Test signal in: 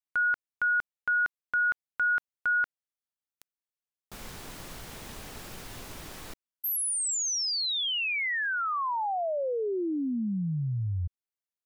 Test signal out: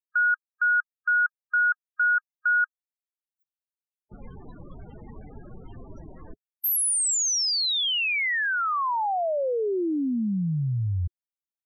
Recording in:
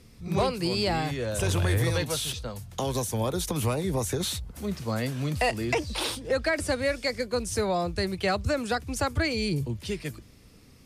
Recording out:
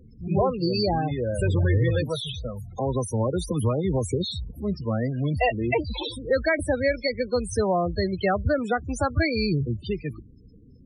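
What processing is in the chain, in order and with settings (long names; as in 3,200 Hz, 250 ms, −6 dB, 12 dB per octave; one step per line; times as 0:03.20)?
high-shelf EQ 7,200 Hz +2.5 dB
spectral peaks only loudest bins 16
level +4 dB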